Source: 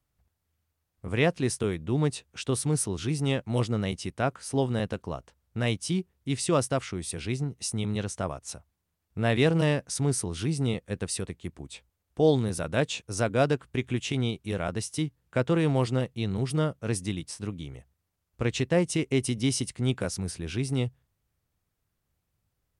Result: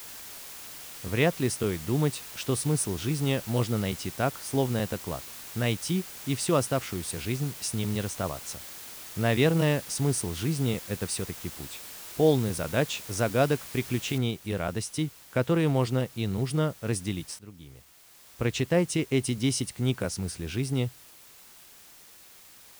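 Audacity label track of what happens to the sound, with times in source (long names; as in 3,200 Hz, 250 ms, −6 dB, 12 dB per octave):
14.180000	14.180000	noise floor change −43 dB −52 dB
17.390000	18.430000	fade in, from −16 dB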